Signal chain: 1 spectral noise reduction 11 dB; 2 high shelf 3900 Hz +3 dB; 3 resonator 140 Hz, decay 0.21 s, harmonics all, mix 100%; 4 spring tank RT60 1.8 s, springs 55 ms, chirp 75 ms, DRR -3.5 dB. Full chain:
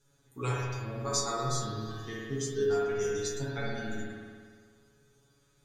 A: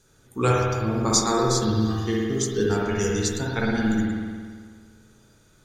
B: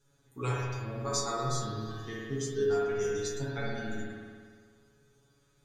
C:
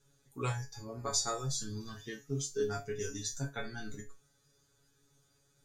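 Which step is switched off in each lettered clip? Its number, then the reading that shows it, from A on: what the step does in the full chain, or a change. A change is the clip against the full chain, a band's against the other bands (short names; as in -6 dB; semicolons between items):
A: 3, 250 Hz band +6.0 dB; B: 2, 8 kHz band -2.0 dB; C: 4, 8 kHz band +5.0 dB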